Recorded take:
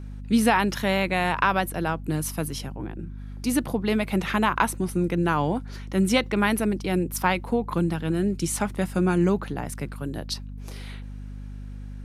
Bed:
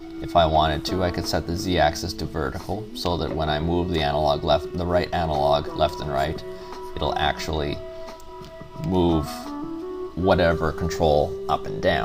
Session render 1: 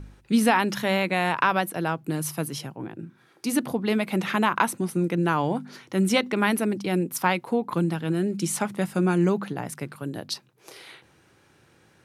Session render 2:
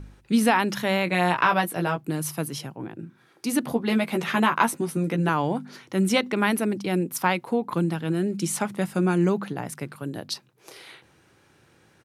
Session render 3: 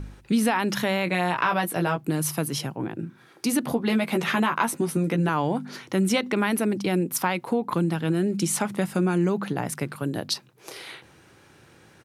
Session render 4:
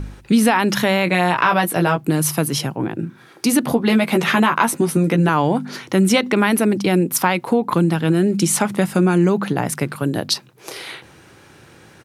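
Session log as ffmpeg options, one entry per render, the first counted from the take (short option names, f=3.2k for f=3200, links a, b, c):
-af "bandreject=f=50:t=h:w=4,bandreject=f=100:t=h:w=4,bandreject=f=150:t=h:w=4,bandreject=f=200:t=h:w=4,bandreject=f=250:t=h:w=4"
-filter_complex "[0:a]asplit=3[a][b][c];[a]afade=t=out:st=1.06:d=0.02[d];[b]asplit=2[e][f];[f]adelay=17,volume=-4dB[g];[e][g]amix=inputs=2:normalize=0,afade=t=in:st=1.06:d=0.02,afade=t=out:st=2:d=0.02[h];[c]afade=t=in:st=2:d=0.02[i];[d][h][i]amix=inputs=3:normalize=0,asettb=1/sr,asplit=3[j][k][l];[j]atrim=end=3.664[m];[k]atrim=start=3.66:end=5.29,asetpts=PTS-STARTPTS,afade=t=in:d=0.004:c=qsin,afade=t=out:st=1.626:d=0.004:c=qsin,asplit=2[n][o];[o]adelay=13,volume=-4.5dB[p];[n][p]amix=inputs=2:normalize=0,atrim=end_sample=71883[q];[l]atrim=start=5.286[r];[m][q]acrossfade=d=0.004:c1=hsin:c2=qsin[s];[s][r]acrossfade=d=0.004:c1=qsin:c2=hsin"
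-filter_complex "[0:a]asplit=2[a][b];[b]alimiter=limit=-16dB:level=0:latency=1:release=28,volume=-1.5dB[c];[a][c]amix=inputs=2:normalize=0,acompressor=threshold=-23dB:ratio=2"
-af "volume=7.5dB,alimiter=limit=-1dB:level=0:latency=1"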